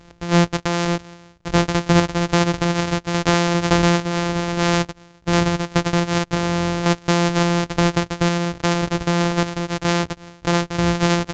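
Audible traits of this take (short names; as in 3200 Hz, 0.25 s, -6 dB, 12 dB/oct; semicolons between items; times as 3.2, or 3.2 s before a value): a buzz of ramps at a fixed pitch in blocks of 256 samples; random-step tremolo; µ-law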